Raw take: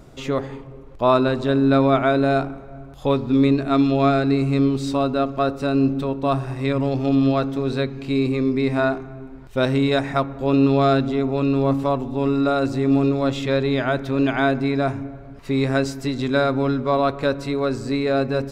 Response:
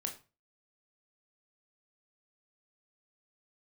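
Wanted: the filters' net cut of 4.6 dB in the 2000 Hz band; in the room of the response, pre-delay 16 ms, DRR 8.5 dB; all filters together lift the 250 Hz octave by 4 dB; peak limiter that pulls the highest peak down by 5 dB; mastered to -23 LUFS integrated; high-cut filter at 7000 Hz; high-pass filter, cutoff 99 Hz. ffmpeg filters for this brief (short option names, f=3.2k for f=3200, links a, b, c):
-filter_complex "[0:a]highpass=99,lowpass=7k,equalizer=f=250:t=o:g=4.5,equalizer=f=2k:t=o:g=-7,alimiter=limit=-9dB:level=0:latency=1,asplit=2[a][b];[1:a]atrim=start_sample=2205,adelay=16[c];[b][c]afir=irnorm=-1:irlink=0,volume=-8.5dB[d];[a][d]amix=inputs=2:normalize=0,volume=-2.5dB"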